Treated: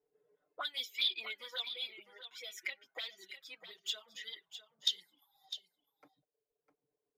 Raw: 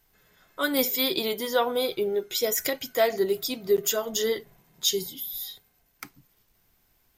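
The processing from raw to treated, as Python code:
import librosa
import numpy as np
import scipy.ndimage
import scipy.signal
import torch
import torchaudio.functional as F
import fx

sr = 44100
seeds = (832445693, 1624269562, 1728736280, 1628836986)

p1 = fx.dereverb_blind(x, sr, rt60_s=0.97)
p2 = fx.level_steps(p1, sr, step_db=17)
p3 = p1 + (p2 * 10.0 ** (-2.0 / 20.0))
p4 = fx.auto_wah(p3, sr, base_hz=440.0, top_hz=3500.0, q=6.3, full_db=-20.0, direction='up')
p5 = fx.env_flanger(p4, sr, rest_ms=6.8, full_db=-14.5)
p6 = p5 + fx.echo_single(p5, sr, ms=654, db=-11.5, dry=0)
y = p6 * 10.0 ** (1.0 / 20.0)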